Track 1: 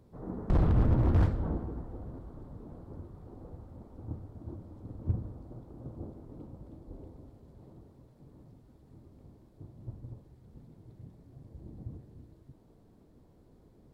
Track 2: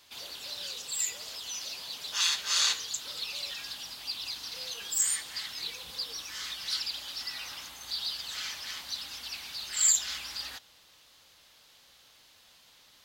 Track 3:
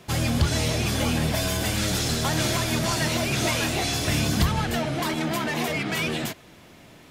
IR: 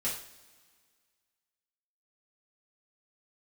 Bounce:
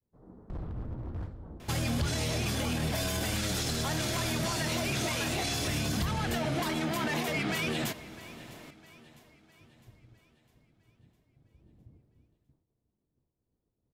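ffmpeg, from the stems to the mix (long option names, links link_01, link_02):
-filter_complex "[0:a]agate=range=-33dB:threshold=-51dB:ratio=3:detection=peak,volume=-13.5dB,asplit=2[link_01][link_02];[link_02]volume=-21dB[link_03];[2:a]adelay=1600,volume=-0.5dB,asplit=2[link_04][link_05];[link_05]volume=-23dB[link_06];[link_03][link_06]amix=inputs=2:normalize=0,aecho=0:1:656|1312|1968|2624|3280|3936|4592:1|0.49|0.24|0.118|0.0576|0.0282|0.0138[link_07];[link_01][link_04][link_07]amix=inputs=3:normalize=0,alimiter=limit=-22.5dB:level=0:latency=1:release=53"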